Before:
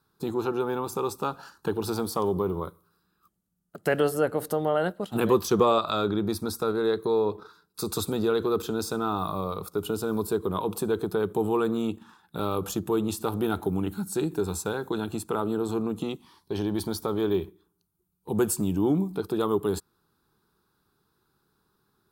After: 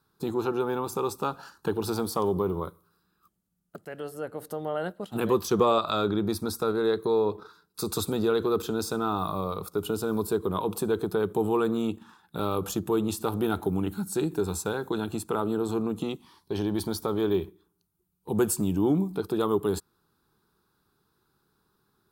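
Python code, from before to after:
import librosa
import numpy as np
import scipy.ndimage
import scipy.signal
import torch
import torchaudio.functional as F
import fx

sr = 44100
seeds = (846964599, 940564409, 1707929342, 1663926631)

y = fx.edit(x, sr, fx.fade_in_from(start_s=3.85, length_s=2.08, floor_db=-17.0), tone=tone)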